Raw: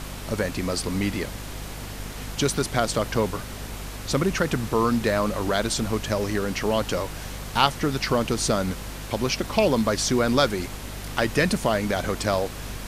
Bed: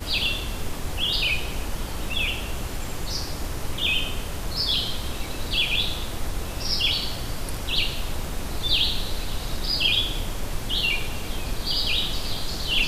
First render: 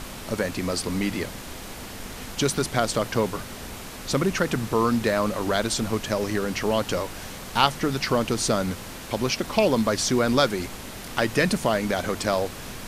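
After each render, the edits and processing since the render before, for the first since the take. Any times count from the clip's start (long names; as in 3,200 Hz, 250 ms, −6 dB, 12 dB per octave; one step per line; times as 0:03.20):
mains-hum notches 50/100/150 Hz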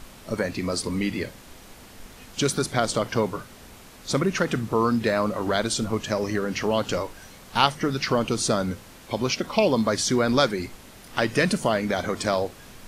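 noise reduction from a noise print 9 dB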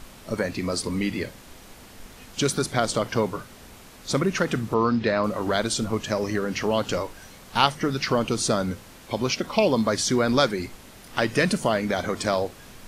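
0:04.74–0:05.24: low-pass filter 5,300 Hz 24 dB per octave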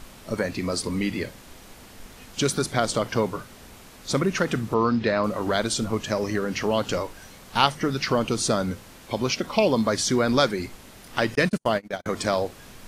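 0:11.35–0:12.06: noise gate −24 dBFS, range −48 dB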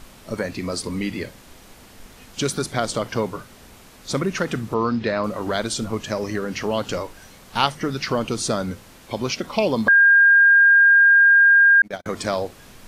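0:09.88–0:11.82: beep over 1,610 Hz −9.5 dBFS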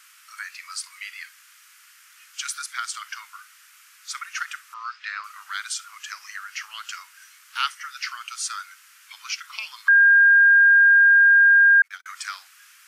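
elliptic high-pass filter 1,300 Hz, stop band 60 dB
parametric band 3,800 Hz −6.5 dB 0.55 octaves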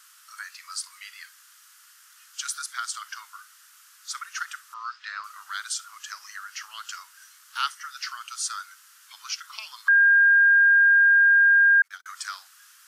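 parametric band 2,300 Hz −10 dB 0.62 octaves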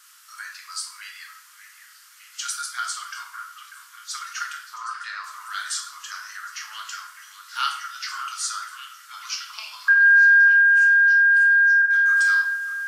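echo through a band-pass that steps 594 ms, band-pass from 1,500 Hz, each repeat 0.7 octaves, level −8 dB
rectangular room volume 150 cubic metres, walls mixed, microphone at 0.93 metres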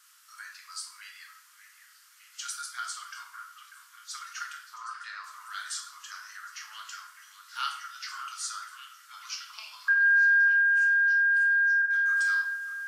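level −7.5 dB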